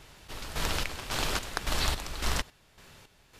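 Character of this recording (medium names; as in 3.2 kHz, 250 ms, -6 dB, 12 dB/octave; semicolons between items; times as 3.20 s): chopped level 1.8 Hz, depth 65%, duty 50%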